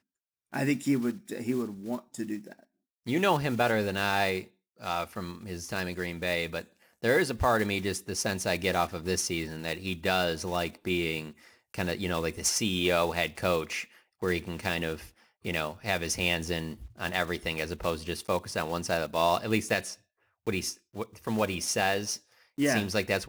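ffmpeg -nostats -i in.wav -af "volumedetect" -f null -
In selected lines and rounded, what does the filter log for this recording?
mean_volume: -30.8 dB
max_volume: -11.6 dB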